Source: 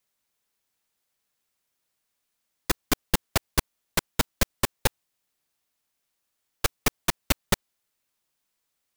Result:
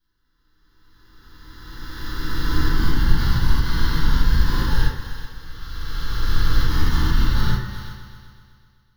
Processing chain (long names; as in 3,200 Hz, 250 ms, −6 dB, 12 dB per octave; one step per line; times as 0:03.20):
peak hold with a rise ahead of every peak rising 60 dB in 2.71 s
low-pass filter 3,100 Hz 6 dB per octave
low-shelf EQ 210 Hz +8.5 dB
hum removal 98.06 Hz, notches 27
brickwall limiter −9.5 dBFS, peak gain reduction 8 dB
phaser with its sweep stopped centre 2,400 Hz, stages 6
echo machine with several playback heads 126 ms, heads all three, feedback 43%, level −19.5 dB
convolution reverb RT60 0.40 s, pre-delay 3 ms, DRR −8.5 dB
one half of a high-frequency compander encoder only
level −14.5 dB